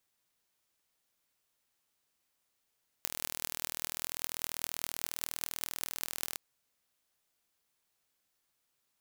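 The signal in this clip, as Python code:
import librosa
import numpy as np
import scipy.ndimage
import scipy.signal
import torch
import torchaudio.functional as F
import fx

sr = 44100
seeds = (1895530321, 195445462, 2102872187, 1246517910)

y = fx.impulse_train(sr, length_s=3.31, per_s=40.2, accent_every=8, level_db=-4.5)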